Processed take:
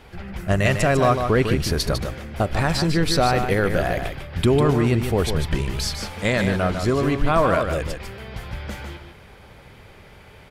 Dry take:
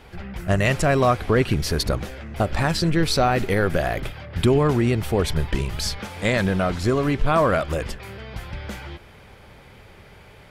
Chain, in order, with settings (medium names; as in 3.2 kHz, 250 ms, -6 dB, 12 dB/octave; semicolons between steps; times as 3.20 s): delay 150 ms -7 dB